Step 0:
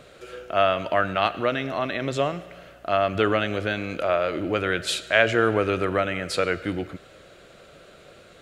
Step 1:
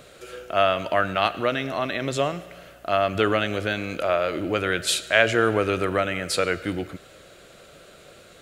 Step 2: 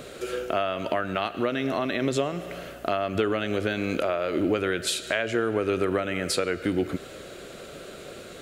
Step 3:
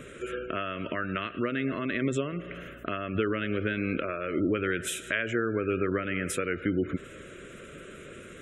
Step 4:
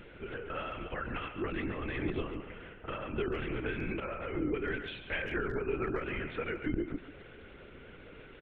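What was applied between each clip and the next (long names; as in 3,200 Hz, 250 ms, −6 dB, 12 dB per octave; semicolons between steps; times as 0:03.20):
high-shelf EQ 6,600 Hz +10.5 dB
downward compressor 6 to 1, threshold −30 dBFS, peak gain reduction 16.5 dB; hollow resonant body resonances 250/380 Hz, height 6 dB, ringing for 25 ms; level +5 dB
gate on every frequency bin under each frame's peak −30 dB strong; phaser with its sweep stopped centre 1,900 Hz, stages 4
linear-prediction vocoder at 8 kHz whisper; far-end echo of a speakerphone 140 ms, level −9 dB; level −6 dB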